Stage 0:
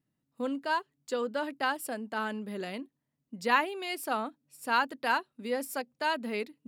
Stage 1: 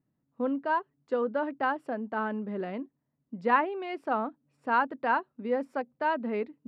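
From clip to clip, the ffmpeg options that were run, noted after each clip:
-af "lowpass=1.4k,volume=3.5dB"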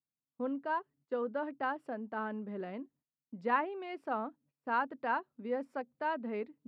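-af "agate=range=-19dB:threshold=-59dB:ratio=16:detection=peak,volume=-6.5dB"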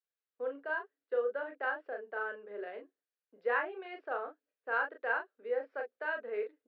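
-af "highpass=f=420:w=0.5412,highpass=f=420:w=1.3066,equalizer=f=450:t=q:w=4:g=9,equalizer=f=950:t=q:w=4:g=-8,equalizer=f=1.6k:t=q:w=4:g=8,lowpass=f=4k:w=0.5412,lowpass=f=4k:w=1.3066,aecho=1:1:29|39:0.398|0.473,volume=-2.5dB"

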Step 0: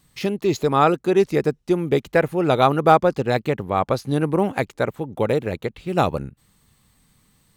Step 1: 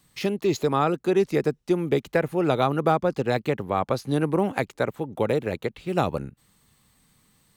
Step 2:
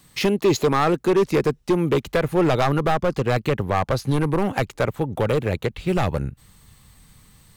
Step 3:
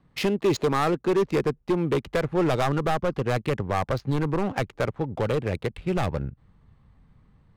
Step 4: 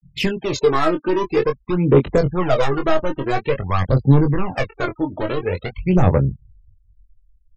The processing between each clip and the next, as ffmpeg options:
-filter_complex "[0:a]lowshelf=f=120:g=-6,acrossover=split=280[a][b];[b]acompressor=threshold=-20dB:ratio=2.5[c];[a][c]amix=inputs=2:normalize=0,volume=-1dB"
-af "asoftclip=type=hard:threshold=-19dB,asubboost=boost=3:cutoff=130,alimiter=limit=-20.5dB:level=0:latency=1:release=248,volume=8.5dB"
-af "adynamicsmooth=sensitivity=5:basefreq=1.3k,volume=-4dB"
-filter_complex "[0:a]aphaser=in_gain=1:out_gain=1:delay=3.3:decay=0.7:speed=0.49:type=sinusoidal,afftfilt=real='re*gte(hypot(re,im),0.0178)':imag='im*gte(hypot(re,im),0.0178)':win_size=1024:overlap=0.75,asplit=2[a][b];[b]adelay=22,volume=-6dB[c];[a][c]amix=inputs=2:normalize=0,volume=1.5dB"

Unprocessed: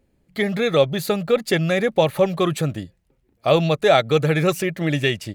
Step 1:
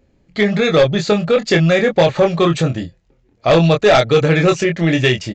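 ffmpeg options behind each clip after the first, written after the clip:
-filter_complex "[0:a]asplit=2[a][b];[b]adelay=24,volume=-5dB[c];[a][c]amix=inputs=2:normalize=0,aresample=16000,aeval=exprs='0.841*sin(PI/2*2*val(0)/0.841)':c=same,aresample=44100,volume=-4dB"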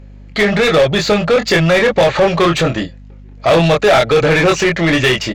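-filter_complex "[0:a]asplit=2[a][b];[b]highpass=f=720:p=1,volume=20dB,asoftclip=type=tanh:threshold=-5dB[c];[a][c]amix=inputs=2:normalize=0,lowpass=f=3.1k:p=1,volume=-6dB,aeval=exprs='val(0)+0.0178*(sin(2*PI*50*n/s)+sin(2*PI*2*50*n/s)/2+sin(2*PI*3*50*n/s)/3+sin(2*PI*4*50*n/s)/4+sin(2*PI*5*50*n/s)/5)':c=same"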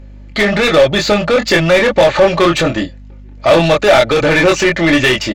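-af "aecho=1:1:3.4:0.36,volume=1dB"

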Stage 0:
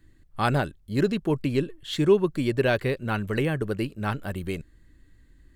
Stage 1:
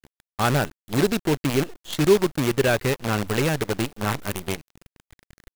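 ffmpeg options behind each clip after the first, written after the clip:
-af "acrusher=bits=5:dc=4:mix=0:aa=0.000001,volume=2dB"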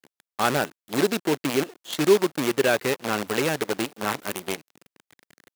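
-af "highpass=240"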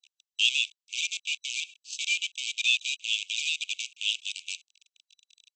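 -af "afftfilt=real='real(if(lt(b,920),b+92*(1-2*mod(floor(b/92),2)),b),0)':imag='imag(if(lt(b,920),b+92*(1-2*mod(floor(b/92),2)),b),0)':win_size=2048:overlap=0.75,asuperpass=centerf=4700:order=20:qfactor=0.86"

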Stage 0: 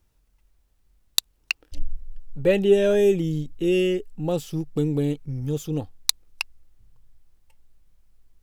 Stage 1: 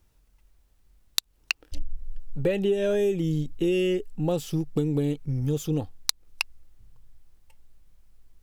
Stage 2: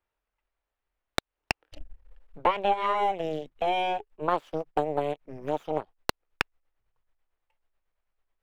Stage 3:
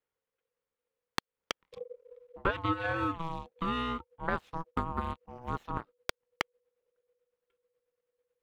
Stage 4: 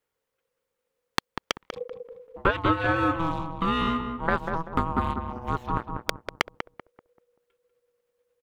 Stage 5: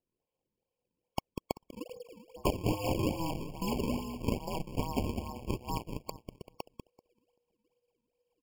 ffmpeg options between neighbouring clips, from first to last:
-af "acompressor=threshold=-23dB:ratio=12,volume=2.5dB"
-filter_complex "[0:a]aeval=exprs='0.891*(cos(1*acos(clip(val(0)/0.891,-1,1)))-cos(1*PI/2))+0.316*(cos(4*acos(clip(val(0)/0.891,-1,1)))-cos(4*PI/2))+0.0891*(cos(7*acos(clip(val(0)/0.891,-1,1)))-cos(7*PI/2))+0.224*(cos(8*acos(clip(val(0)/0.891,-1,1)))-cos(8*PI/2))':c=same,acrossover=split=450 3000:gain=0.112 1 0.1[a][b][c];[a][b][c]amix=inputs=3:normalize=0,volume=2.5dB"
-af "aeval=exprs='val(0)*sin(2*PI*490*n/s)':c=same,volume=-3dB"
-filter_complex "[0:a]asplit=2[a][b];[b]adelay=193,lowpass=f=1.2k:p=1,volume=-4.5dB,asplit=2[c][d];[d]adelay=193,lowpass=f=1.2k:p=1,volume=0.37,asplit=2[e][f];[f]adelay=193,lowpass=f=1.2k:p=1,volume=0.37,asplit=2[g][h];[h]adelay=193,lowpass=f=1.2k:p=1,volume=0.37,asplit=2[i][j];[j]adelay=193,lowpass=f=1.2k:p=1,volume=0.37[k];[a][c][e][g][i][k]amix=inputs=6:normalize=0,volume=7dB"
-af "acrusher=samples=35:mix=1:aa=0.000001:lfo=1:lforange=56:lforate=2.4,afftfilt=real='re*eq(mod(floor(b*sr/1024/1100),2),0)':imag='im*eq(mod(floor(b*sr/1024/1100),2),0)':win_size=1024:overlap=0.75,volume=-6.5dB"

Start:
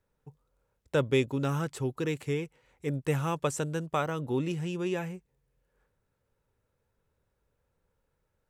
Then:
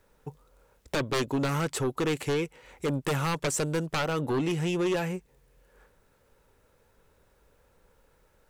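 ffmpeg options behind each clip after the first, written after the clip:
-af "equalizer=f=110:t=o:w=1.5:g=-8,acompressor=threshold=-47dB:ratio=1.5,aeval=exprs='0.0708*sin(PI/2*3.55*val(0)/0.0708)':c=same"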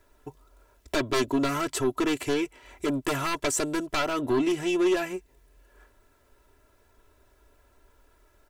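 -af "aecho=1:1:3:0.86"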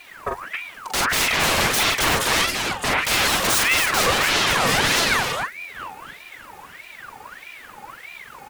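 -af "aeval=exprs='0.133*sin(PI/2*5.01*val(0)/0.133)':c=same,aecho=1:1:44|155|163|270|313:0.708|0.1|0.188|0.668|0.188,aeval=exprs='val(0)*sin(2*PI*1600*n/s+1600*0.5/1.6*sin(2*PI*1.6*n/s))':c=same,volume=1.5dB"

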